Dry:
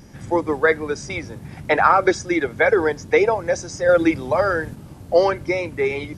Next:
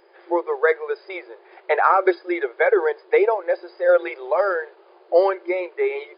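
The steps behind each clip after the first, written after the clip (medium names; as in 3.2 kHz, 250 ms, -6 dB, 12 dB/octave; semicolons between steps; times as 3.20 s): FFT band-pass 340–5000 Hz; treble shelf 2.7 kHz -11.5 dB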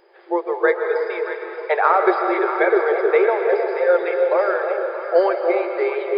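on a send: echo whose repeats swap between lows and highs 314 ms, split 870 Hz, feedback 64%, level -6 dB; on the sum: algorithmic reverb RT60 3.1 s, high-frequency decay 0.85×, pre-delay 90 ms, DRR 4.5 dB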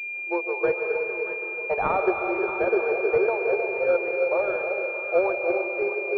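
class-D stage that switches slowly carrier 2.4 kHz; trim -5.5 dB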